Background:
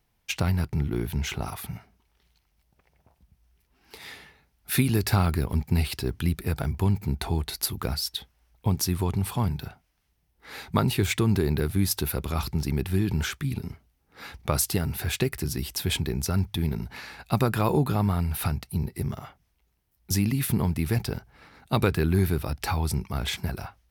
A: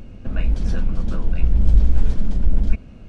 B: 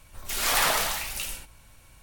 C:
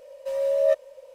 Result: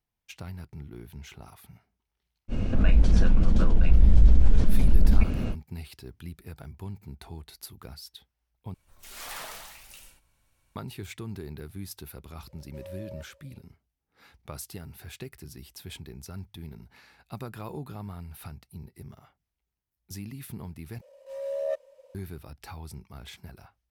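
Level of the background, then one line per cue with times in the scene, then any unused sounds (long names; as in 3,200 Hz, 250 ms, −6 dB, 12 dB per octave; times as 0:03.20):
background −15 dB
0:02.48: mix in A −3.5 dB, fades 0.05 s + envelope flattener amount 50%
0:08.74: overwrite with B −16 dB
0:12.48: mix in C −17.5 dB + brickwall limiter −20 dBFS
0:21.01: overwrite with C −7.5 dB + transient designer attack −9 dB, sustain −2 dB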